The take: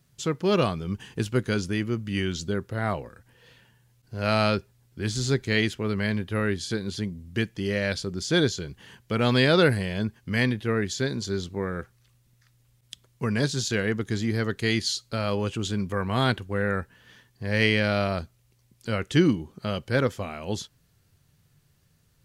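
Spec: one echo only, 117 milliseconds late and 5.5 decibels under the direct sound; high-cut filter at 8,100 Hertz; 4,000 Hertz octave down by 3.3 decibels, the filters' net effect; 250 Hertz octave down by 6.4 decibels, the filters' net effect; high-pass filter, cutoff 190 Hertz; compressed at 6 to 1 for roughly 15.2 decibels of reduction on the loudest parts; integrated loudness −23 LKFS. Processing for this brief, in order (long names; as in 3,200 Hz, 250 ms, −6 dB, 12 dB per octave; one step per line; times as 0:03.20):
high-pass filter 190 Hz
low-pass filter 8,100 Hz
parametric band 250 Hz −6.5 dB
parametric band 4,000 Hz −4 dB
downward compressor 6 to 1, threshold −35 dBFS
single-tap delay 117 ms −5.5 dB
level +16 dB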